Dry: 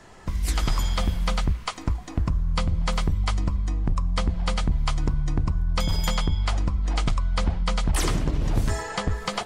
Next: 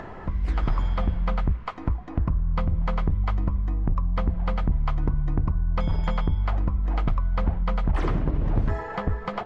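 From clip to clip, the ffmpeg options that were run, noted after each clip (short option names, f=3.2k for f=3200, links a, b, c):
-af "lowpass=1.6k,acompressor=mode=upward:threshold=-28dB:ratio=2.5"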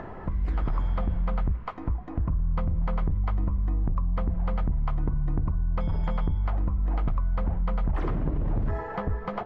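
-af "highshelf=f=2.6k:g=-11,alimiter=limit=-20dB:level=0:latency=1:release=23"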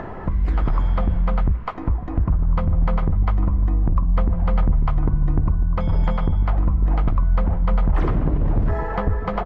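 -filter_complex "[0:a]asplit=2[a][b];[b]adelay=1749,volume=-10dB,highshelf=f=4k:g=-39.4[c];[a][c]amix=inputs=2:normalize=0,volume=7dB"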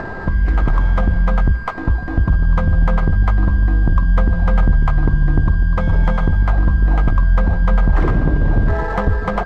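-af "aeval=exprs='val(0)+0.0178*sin(2*PI*1600*n/s)':c=same,adynamicsmooth=sensitivity=6.5:basefreq=2.6k,volume=4.5dB"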